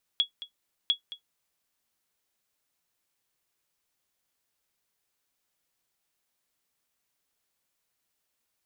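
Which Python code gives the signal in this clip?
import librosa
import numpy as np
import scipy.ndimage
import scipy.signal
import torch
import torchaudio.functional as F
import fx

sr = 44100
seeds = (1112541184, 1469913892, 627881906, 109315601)

y = fx.sonar_ping(sr, hz=3350.0, decay_s=0.11, every_s=0.7, pings=2, echo_s=0.22, echo_db=-15.5, level_db=-15.0)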